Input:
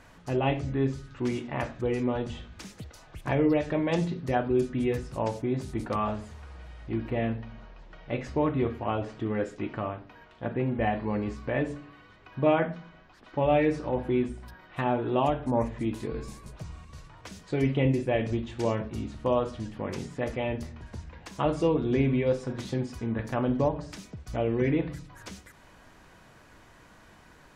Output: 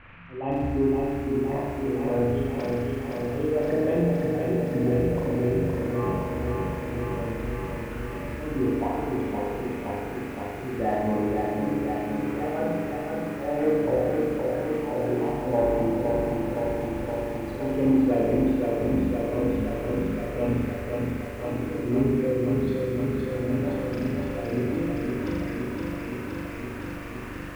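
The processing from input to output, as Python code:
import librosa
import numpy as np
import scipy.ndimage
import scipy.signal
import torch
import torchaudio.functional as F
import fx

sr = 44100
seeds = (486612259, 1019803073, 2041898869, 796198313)

p1 = fx.envelope_sharpen(x, sr, power=2.0)
p2 = fx.auto_swell(p1, sr, attack_ms=408.0)
p3 = fx.dmg_noise_band(p2, sr, seeds[0], low_hz=1000.0, high_hz=2600.0, level_db=-56.0)
p4 = p3 + fx.room_flutter(p3, sr, wall_m=7.1, rt60_s=1.4, dry=0)
p5 = fx.rider(p4, sr, range_db=4, speed_s=2.0)
p6 = 10.0 ** (-21.0 / 20.0) * np.tanh(p5 / 10.0 ** (-21.0 / 20.0))
p7 = p5 + F.gain(torch.from_numpy(p6), -5.0).numpy()
p8 = scipy.signal.sosfilt(scipy.signal.butter(2, 3700.0, 'lowpass', fs=sr, output='sos'), p7)
p9 = fx.echo_crushed(p8, sr, ms=517, feedback_pct=80, bits=8, wet_db=-3.5)
y = F.gain(torch.from_numpy(p9), -3.5).numpy()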